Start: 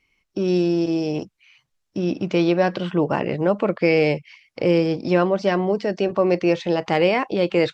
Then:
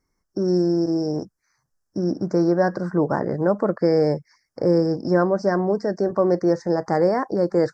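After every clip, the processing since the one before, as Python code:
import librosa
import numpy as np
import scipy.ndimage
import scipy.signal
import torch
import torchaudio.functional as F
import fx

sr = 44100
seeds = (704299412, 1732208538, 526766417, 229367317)

y = scipy.signal.sosfilt(scipy.signal.ellip(3, 1.0, 80, [1700.0, 5100.0], 'bandstop', fs=sr, output='sos'), x)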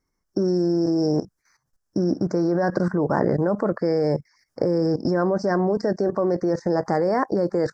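y = fx.level_steps(x, sr, step_db=14)
y = F.gain(torch.from_numpy(y), 7.5).numpy()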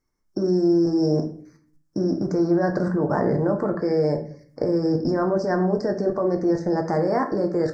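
y = fx.room_shoebox(x, sr, seeds[0], volume_m3=55.0, walls='mixed', distance_m=0.4)
y = F.gain(torch.from_numpy(y), -2.5).numpy()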